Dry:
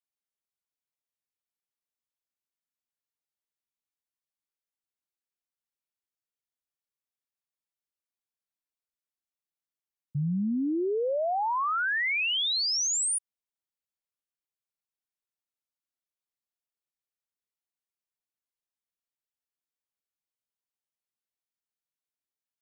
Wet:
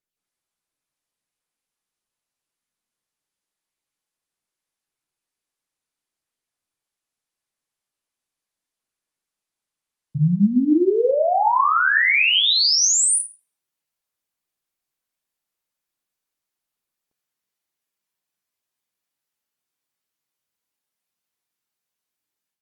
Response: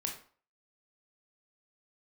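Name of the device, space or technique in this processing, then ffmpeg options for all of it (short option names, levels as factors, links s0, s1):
far-field microphone of a smart speaker: -filter_complex "[1:a]atrim=start_sample=2205[s0];[0:a][s0]afir=irnorm=-1:irlink=0,highpass=f=84:p=1,dynaudnorm=f=130:g=3:m=2.82" -ar 48000 -c:a libopus -b:a 32k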